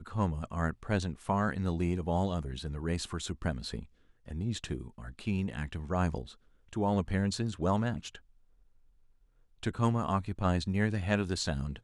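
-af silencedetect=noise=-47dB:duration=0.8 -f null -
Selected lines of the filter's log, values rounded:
silence_start: 8.18
silence_end: 9.63 | silence_duration: 1.45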